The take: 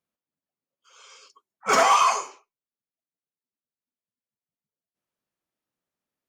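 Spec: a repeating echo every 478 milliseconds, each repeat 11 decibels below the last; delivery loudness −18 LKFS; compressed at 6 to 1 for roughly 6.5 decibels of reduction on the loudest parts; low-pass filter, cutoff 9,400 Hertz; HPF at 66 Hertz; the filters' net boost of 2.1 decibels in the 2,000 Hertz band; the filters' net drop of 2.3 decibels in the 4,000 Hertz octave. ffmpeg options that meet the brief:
ffmpeg -i in.wav -af "highpass=66,lowpass=9400,equalizer=frequency=2000:width_type=o:gain=4,equalizer=frequency=4000:width_type=o:gain=-5,acompressor=threshold=-21dB:ratio=6,aecho=1:1:478|956|1434:0.282|0.0789|0.0221,volume=9dB" out.wav

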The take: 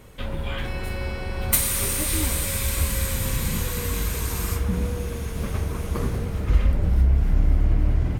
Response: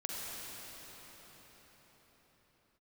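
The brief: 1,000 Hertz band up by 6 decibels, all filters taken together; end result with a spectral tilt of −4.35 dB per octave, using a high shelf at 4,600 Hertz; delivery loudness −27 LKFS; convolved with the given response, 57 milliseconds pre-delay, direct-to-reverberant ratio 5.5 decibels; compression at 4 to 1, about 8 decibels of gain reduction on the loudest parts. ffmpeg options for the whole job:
-filter_complex "[0:a]equalizer=frequency=1000:width_type=o:gain=7.5,highshelf=frequency=4600:gain=-4.5,acompressor=threshold=-23dB:ratio=4,asplit=2[link_01][link_02];[1:a]atrim=start_sample=2205,adelay=57[link_03];[link_02][link_03]afir=irnorm=-1:irlink=0,volume=-8.5dB[link_04];[link_01][link_04]amix=inputs=2:normalize=0,volume=1dB"

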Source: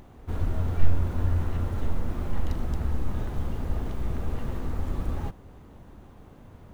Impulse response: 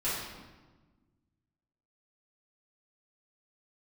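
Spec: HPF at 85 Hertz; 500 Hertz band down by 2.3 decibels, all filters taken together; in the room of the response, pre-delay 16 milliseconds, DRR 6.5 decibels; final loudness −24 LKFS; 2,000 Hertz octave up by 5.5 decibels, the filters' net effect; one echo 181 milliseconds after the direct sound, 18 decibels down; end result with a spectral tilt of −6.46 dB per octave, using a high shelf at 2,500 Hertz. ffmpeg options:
-filter_complex "[0:a]highpass=85,equalizer=frequency=500:width_type=o:gain=-3.5,equalizer=frequency=2000:width_type=o:gain=5.5,highshelf=frequency=2500:gain=4,aecho=1:1:181:0.126,asplit=2[link_01][link_02];[1:a]atrim=start_sample=2205,adelay=16[link_03];[link_02][link_03]afir=irnorm=-1:irlink=0,volume=-14.5dB[link_04];[link_01][link_04]amix=inputs=2:normalize=0,volume=10dB"

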